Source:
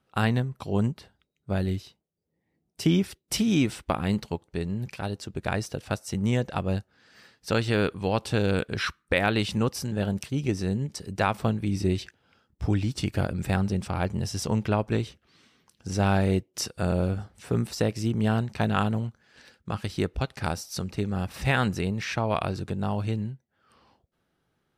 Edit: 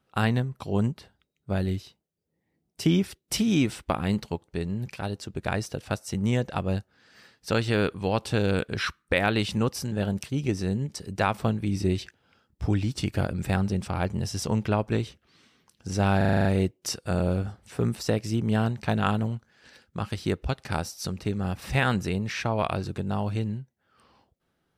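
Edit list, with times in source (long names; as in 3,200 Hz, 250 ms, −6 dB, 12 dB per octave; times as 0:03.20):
0:16.17: stutter 0.04 s, 8 plays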